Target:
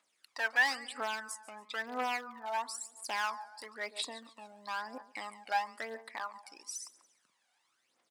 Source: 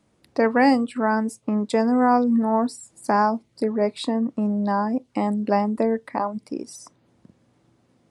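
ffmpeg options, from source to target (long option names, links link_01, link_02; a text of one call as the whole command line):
ffmpeg -i in.wav -filter_complex "[0:a]asettb=1/sr,asplit=3[link_01][link_02][link_03];[link_01]atrim=end=1.654[link_04];[link_02]atrim=start=1.65:end=2.56,asetpts=PTS-STARTPTS,afade=type=in:duration=0.004:curve=qsin,afade=type=out:start_time=0.906:duration=0.004:curve=qsin,lowpass=2600[link_05];[link_03]atrim=start=2.556[link_06];[link_04][link_05]acrossfade=duration=0.004:curve1=hsin:curve2=qsin[link_07];[link_07][link_06]acrossfade=duration=0.004:curve1=qsin:curve2=hsin,aecho=1:1:141|282|423:0.126|0.0491|0.0191,aeval=exprs='clip(val(0),-1,0.2)':channel_layout=same,aphaser=in_gain=1:out_gain=1:delay=1.4:decay=0.66:speed=1:type=triangular,highpass=1400,volume=-4dB" out.wav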